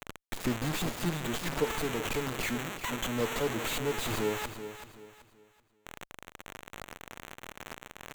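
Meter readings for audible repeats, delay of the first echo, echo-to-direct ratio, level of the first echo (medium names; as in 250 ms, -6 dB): 3, 381 ms, -10.5 dB, -11.0 dB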